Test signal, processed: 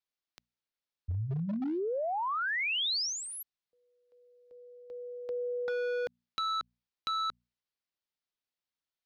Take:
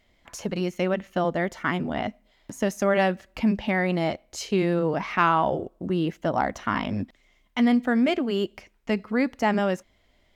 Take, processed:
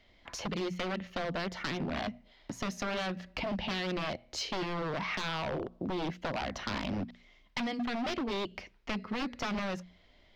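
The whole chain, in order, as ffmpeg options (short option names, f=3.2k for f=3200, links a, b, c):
-filter_complex "[0:a]acrossover=split=190|3000[a][b][c];[b]acompressor=threshold=-25dB:ratio=4[d];[a][d][c]amix=inputs=3:normalize=0,aeval=exprs='0.266*(cos(1*acos(clip(val(0)/0.266,-1,1)))-cos(1*PI/2))+0.00211*(cos(2*acos(clip(val(0)/0.266,-1,1)))-cos(2*PI/2))+0.00531*(cos(5*acos(clip(val(0)/0.266,-1,1)))-cos(5*PI/2))':c=same,bandreject=f=60:t=h:w=6,bandreject=f=120:t=h:w=6,bandreject=f=180:t=h:w=6,bandreject=f=240:t=h:w=6,aeval=exprs='0.0562*(abs(mod(val(0)/0.0562+3,4)-2)-1)':c=same,highshelf=f=6.4k:t=q:w=1.5:g=-11,acompressor=threshold=-34dB:ratio=2"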